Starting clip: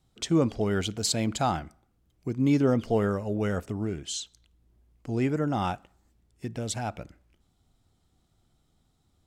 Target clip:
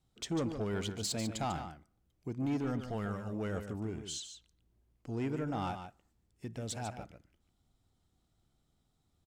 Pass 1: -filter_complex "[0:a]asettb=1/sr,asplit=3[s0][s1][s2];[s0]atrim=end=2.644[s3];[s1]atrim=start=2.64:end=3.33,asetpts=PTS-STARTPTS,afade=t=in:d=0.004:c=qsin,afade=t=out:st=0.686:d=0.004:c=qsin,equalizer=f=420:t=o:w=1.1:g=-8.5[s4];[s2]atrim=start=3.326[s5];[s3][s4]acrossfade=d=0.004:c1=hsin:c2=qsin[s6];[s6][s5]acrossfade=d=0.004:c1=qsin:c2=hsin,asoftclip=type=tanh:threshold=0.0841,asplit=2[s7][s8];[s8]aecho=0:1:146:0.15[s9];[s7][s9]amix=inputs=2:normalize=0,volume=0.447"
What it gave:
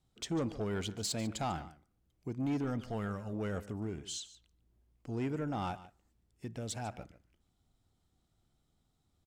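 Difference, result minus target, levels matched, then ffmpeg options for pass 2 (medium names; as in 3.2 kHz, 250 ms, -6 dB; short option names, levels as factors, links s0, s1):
echo-to-direct -7.5 dB
-filter_complex "[0:a]asettb=1/sr,asplit=3[s0][s1][s2];[s0]atrim=end=2.644[s3];[s1]atrim=start=2.64:end=3.33,asetpts=PTS-STARTPTS,afade=t=in:d=0.004:c=qsin,afade=t=out:st=0.686:d=0.004:c=qsin,equalizer=f=420:t=o:w=1.1:g=-8.5[s4];[s2]atrim=start=3.326[s5];[s3][s4]acrossfade=d=0.004:c1=hsin:c2=qsin[s6];[s6][s5]acrossfade=d=0.004:c1=qsin:c2=hsin,asoftclip=type=tanh:threshold=0.0841,asplit=2[s7][s8];[s8]aecho=0:1:146:0.355[s9];[s7][s9]amix=inputs=2:normalize=0,volume=0.447"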